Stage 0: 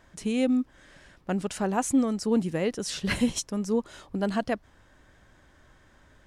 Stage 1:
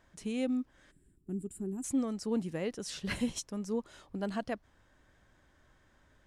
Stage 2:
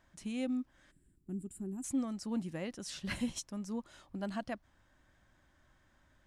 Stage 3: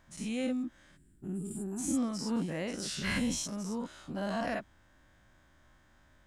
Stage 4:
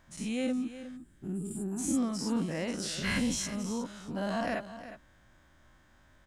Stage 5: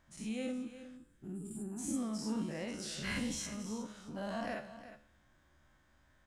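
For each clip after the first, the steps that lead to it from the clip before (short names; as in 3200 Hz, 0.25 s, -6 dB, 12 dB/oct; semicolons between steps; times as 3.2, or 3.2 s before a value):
spectral gain 0.91–1.84, 430–7100 Hz -23 dB; gain -8 dB
bell 440 Hz -13 dB 0.21 oct; gain -2.5 dB
spectral dilation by 0.12 s
echo 0.36 s -13 dB; gain +1.5 dB
resonator 72 Hz, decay 0.7 s, harmonics all, mix 70%; gain +1 dB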